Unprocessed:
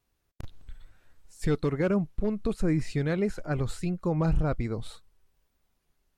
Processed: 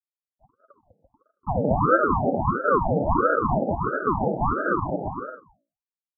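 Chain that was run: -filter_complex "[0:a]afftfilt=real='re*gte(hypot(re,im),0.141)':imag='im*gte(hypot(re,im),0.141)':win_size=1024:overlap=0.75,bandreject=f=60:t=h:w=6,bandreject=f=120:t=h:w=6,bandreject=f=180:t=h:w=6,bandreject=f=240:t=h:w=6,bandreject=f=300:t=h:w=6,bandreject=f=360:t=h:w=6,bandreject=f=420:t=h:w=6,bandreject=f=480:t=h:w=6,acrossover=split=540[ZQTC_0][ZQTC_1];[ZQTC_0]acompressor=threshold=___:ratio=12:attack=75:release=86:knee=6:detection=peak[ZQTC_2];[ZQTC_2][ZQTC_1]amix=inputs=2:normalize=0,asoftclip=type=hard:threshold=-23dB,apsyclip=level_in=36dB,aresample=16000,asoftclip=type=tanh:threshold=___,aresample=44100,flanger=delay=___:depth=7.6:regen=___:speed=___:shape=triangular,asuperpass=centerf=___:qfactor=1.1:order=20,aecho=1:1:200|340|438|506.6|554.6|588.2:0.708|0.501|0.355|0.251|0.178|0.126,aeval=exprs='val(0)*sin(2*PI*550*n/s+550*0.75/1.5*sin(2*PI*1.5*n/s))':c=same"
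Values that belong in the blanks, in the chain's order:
-33dB, -12dB, 3.1, -5, 1.3, 450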